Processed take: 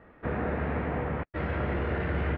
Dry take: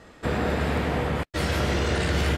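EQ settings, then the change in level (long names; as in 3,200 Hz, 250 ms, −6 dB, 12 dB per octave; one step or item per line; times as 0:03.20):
low-pass filter 2,200 Hz 24 dB per octave
−5.0 dB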